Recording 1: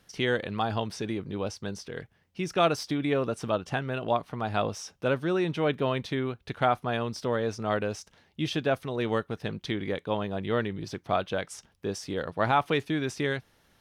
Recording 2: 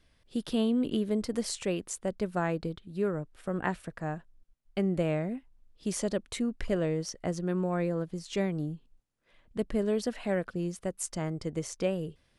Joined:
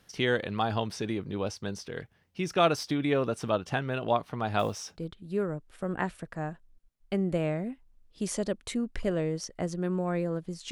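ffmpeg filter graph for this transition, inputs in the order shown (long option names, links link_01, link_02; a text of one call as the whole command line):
ffmpeg -i cue0.wav -i cue1.wav -filter_complex "[0:a]asplit=3[link_01][link_02][link_03];[link_01]afade=type=out:start_time=4.58:duration=0.02[link_04];[link_02]acrusher=bits=7:mode=log:mix=0:aa=0.000001,afade=type=in:start_time=4.58:duration=0.02,afade=type=out:start_time=5.05:duration=0.02[link_05];[link_03]afade=type=in:start_time=5.05:duration=0.02[link_06];[link_04][link_05][link_06]amix=inputs=3:normalize=0,apad=whole_dur=10.71,atrim=end=10.71,atrim=end=5.05,asetpts=PTS-STARTPTS[link_07];[1:a]atrim=start=2.58:end=8.36,asetpts=PTS-STARTPTS[link_08];[link_07][link_08]acrossfade=duration=0.12:curve1=tri:curve2=tri" out.wav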